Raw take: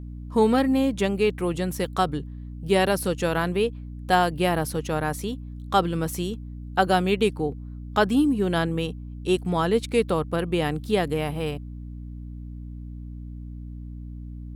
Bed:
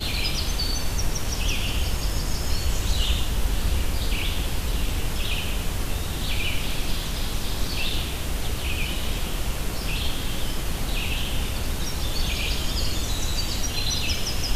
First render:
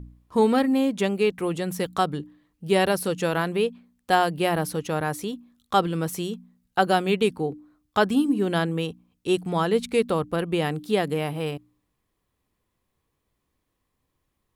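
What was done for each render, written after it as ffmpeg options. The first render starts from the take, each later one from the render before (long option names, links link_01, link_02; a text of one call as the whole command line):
ffmpeg -i in.wav -af "bandreject=frequency=60:width_type=h:width=4,bandreject=frequency=120:width_type=h:width=4,bandreject=frequency=180:width_type=h:width=4,bandreject=frequency=240:width_type=h:width=4,bandreject=frequency=300:width_type=h:width=4" out.wav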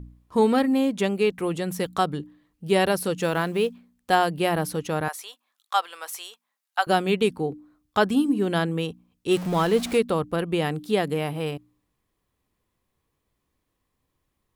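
ffmpeg -i in.wav -filter_complex "[0:a]asettb=1/sr,asplit=3[link_01][link_02][link_03];[link_01]atrim=end=3.174[link_04];[link_02]atrim=start=3.17:end=4.12,asetpts=PTS-STARTPTS,afade=type=in:duration=0.004:curve=qsin,afade=type=out:start_time=0.946:duration=0.004:curve=qsin,acrusher=bits=8:mode=log:mix=0:aa=0.000001[link_05];[link_03]atrim=start=4.116[link_06];[link_04][link_05]acrossfade=duration=0.004:curve1=hsin:curve2=qsin[link_07];[link_07][link_06]acrossfade=duration=0.004:curve1=qsin:curve2=hsin,asettb=1/sr,asplit=3[link_08][link_09][link_10];[link_08]atrim=end=5.084[link_11];[link_09]atrim=start=5.08:end=6.87,asetpts=PTS-STARTPTS,afade=type=in:duration=0.004:curve=qsin,afade=type=out:start_time=1.786:duration=0.004:curve=qsin,highpass=frequency=750:width=0.5412,highpass=frequency=750:width=1.3066[link_12];[link_10]atrim=start=6.866[link_13];[link_11][link_12]acrossfade=duration=0.004:curve1=hsin:curve2=qsin[link_14];[link_14][link_13]acrossfade=duration=0.004:curve1=qsin:curve2=hsin,asettb=1/sr,asplit=3[link_15][link_16][link_17];[link_15]atrim=end=9.314[link_18];[link_16]atrim=start=9.31:end=9.98,asetpts=PTS-STARTPTS,afade=type=in:duration=0.004:curve=qsin,afade=type=out:start_time=0.666:duration=0.004:curve=qsin,aeval=exprs='val(0)+0.5*0.0316*sgn(val(0))':channel_layout=same[link_19];[link_17]atrim=start=9.976[link_20];[link_18][link_19]acrossfade=duration=0.004:curve1=hsin:curve2=qsin[link_21];[link_21][link_20]acrossfade=duration=0.004:curve1=qsin:curve2=hsin" out.wav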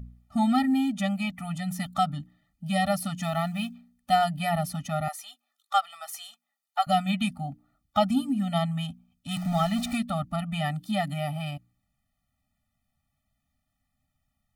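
ffmpeg -i in.wav -af "afftfilt=real='re*eq(mod(floor(b*sr/1024/290),2),0)':imag='im*eq(mod(floor(b*sr/1024/290),2),0)':win_size=1024:overlap=0.75" out.wav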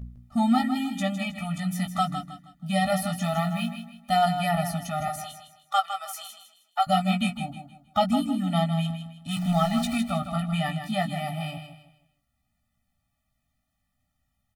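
ffmpeg -i in.wav -filter_complex "[0:a]asplit=2[link_01][link_02];[link_02]adelay=17,volume=-5.5dB[link_03];[link_01][link_03]amix=inputs=2:normalize=0,aecho=1:1:158|316|474|632:0.355|0.114|0.0363|0.0116" out.wav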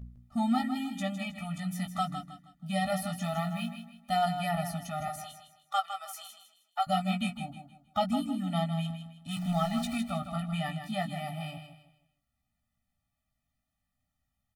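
ffmpeg -i in.wav -af "volume=-6dB" out.wav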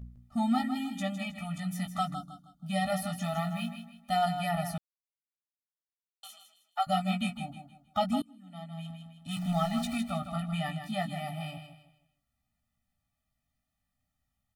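ffmpeg -i in.wav -filter_complex "[0:a]asettb=1/sr,asplit=3[link_01][link_02][link_03];[link_01]atrim=end=2.144[link_04];[link_02]atrim=start=2.14:end=2.66,asetpts=PTS-STARTPTS,afade=type=in:duration=0.004:curve=qsin,afade=type=out:start_time=0.516:duration=0.004:curve=qsin,asuperstop=centerf=2200:order=8:qfactor=1.3[link_05];[link_03]atrim=start=2.656[link_06];[link_04][link_05]acrossfade=duration=0.004:curve1=hsin:curve2=qsin[link_07];[link_07][link_06]acrossfade=duration=0.004:curve1=qsin:curve2=hsin,asplit=4[link_08][link_09][link_10][link_11];[link_08]atrim=end=4.78,asetpts=PTS-STARTPTS,afade=type=out:start_time=4.776:duration=0.004:curve=hsin[link_12];[link_09]atrim=start=4.78:end=6.23,asetpts=PTS-STARTPTS,volume=0[link_13];[link_10]atrim=start=6.23:end=8.22,asetpts=PTS-STARTPTS,afade=type=in:duration=0.004:curve=hsin,afade=type=out:start_time=1.986:duration=0.004:curve=hsin:silence=0.0707946[link_14];[link_11]atrim=start=8.22,asetpts=PTS-STARTPTS,afade=type=in:duration=1.02:curve=qua:silence=0.0707946[link_15];[link_12][link_13][link_14][link_15]concat=n=4:v=0:a=1" out.wav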